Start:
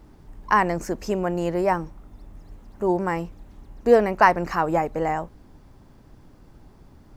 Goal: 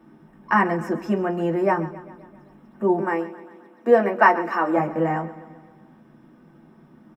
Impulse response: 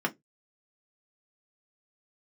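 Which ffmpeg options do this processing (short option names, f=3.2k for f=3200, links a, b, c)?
-filter_complex "[0:a]asettb=1/sr,asplit=3[a][b][c];[a]atrim=end=2.994[d];[b]atrim=start=2.99:end=4.77,asetpts=PTS-STARTPTS,afade=t=in:d=0.004:c=qsin,afade=t=out:st=1.776:d=0.004:c=qsin,highpass=f=250:w=0.5412,highpass=f=250:w=1.3066[e];[c]atrim=start=4.766[f];[d][e]acrossfade=d=0.004:c1=hsin:c2=qsin[g];[g][f]acrossfade=d=0.004:c1=qsin:c2=hsin,aecho=1:1:132|264|396|528|660|792:0.15|0.0883|0.0521|0.0307|0.0181|0.0107[h];[1:a]atrim=start_sample=2205[i];[h][i]afir=irnorm=-1:irlink=0,volume=-8dB"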